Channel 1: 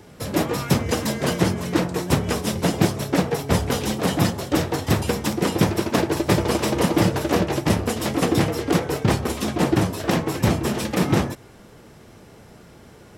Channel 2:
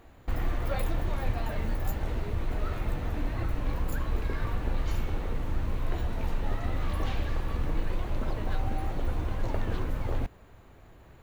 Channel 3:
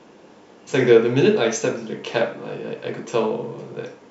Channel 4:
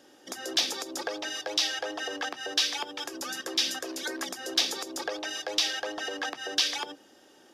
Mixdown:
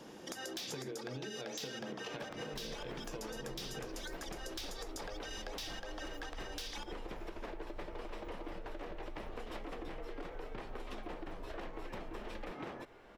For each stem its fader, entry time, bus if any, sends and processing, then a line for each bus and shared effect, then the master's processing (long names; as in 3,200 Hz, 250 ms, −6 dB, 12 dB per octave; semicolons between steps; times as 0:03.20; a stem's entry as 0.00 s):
−19.0 dB, 1.50 s, bus A, no send, three-way crossover with the lows and the highs turned down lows −16 dB, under 310 Hz, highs −18 dB, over 3,700 Hz; automatic gain control gain up to 16.5 dB
−16.5 dB, 2.25 s, bus B, no send, parametric band 110 Hz −14 dB 2.2 octaves
−7.0 dB, 0.00 s, bus B, no send, downward compressor, threshold −23 dBFS, peak gain reduction 14.5 dB
−0.5 dB, 0.00 s, bus A, no send, no processing
bus A: 0.0 dB, gain into a clipping stage and back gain 25 dB; downward compressor, threshold −37 dBFS, peak gain reduction 9.5 dB
bus B: 0.0 dB, low-shelf EQ 180 Hz +9 dB; downward compressor 2 to 1, threshold −39 dBFS, peak gain reduction 8 dB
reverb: not used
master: downward compressor, threshold −40 dBFS, peak gain reduction 8.5 dB